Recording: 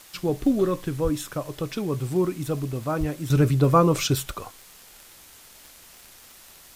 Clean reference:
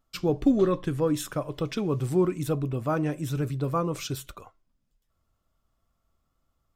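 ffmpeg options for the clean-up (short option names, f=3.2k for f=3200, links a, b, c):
-filter_complex "[0:a]adeclick=t=4,asplit=3[a][b][c];[a]afade=t=out:st=1.03:d=0.02[d];[b]highpass=f=140:w=0.5412,highpass=f=140:w=1.3066,afade=t=in:st=1.03:d=0.02,afade=t=out:st=1.15:d=0.02[e];[c]afade=t=in:st=1.15:d=0.02[f];[d][e][f]amix=inputs=3:normalize=0,asplit=3[g][h][i];[g]afade=t=out:st=2.99:d=0.02[j];[h]highpass=f=140:w=0.5412,highpass=f=140:w=1.3066,afade=t=in:st=2.99:d=0.02,afade=t=out:st=3.11:d=0.02[k];[i]afade=t=in:st=3.11:d=0.02[l];[j][k][l]amix=inputs=3:normalize=0,afwtdn=0.004,asetnsamples=n=441:p=0,asendcmd='3.3 volume volume -9.5dB',volume=0dB"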